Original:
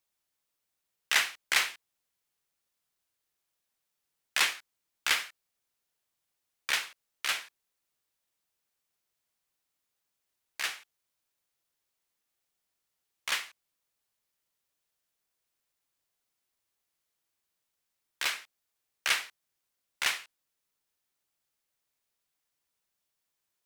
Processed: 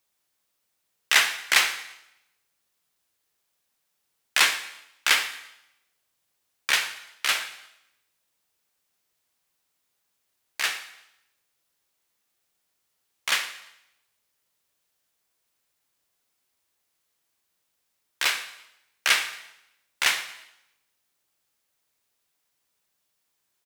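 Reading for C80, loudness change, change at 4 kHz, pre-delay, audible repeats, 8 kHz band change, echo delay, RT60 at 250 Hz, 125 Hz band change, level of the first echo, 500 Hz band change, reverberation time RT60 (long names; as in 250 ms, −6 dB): 13.0 dB, +6.5 dB, +7.0 dB, 8 ms, 3, +7.0 dB, 114 ms, 0.85 s, can't be measured, −18.5 dB, +7.0 dB, 0.85 s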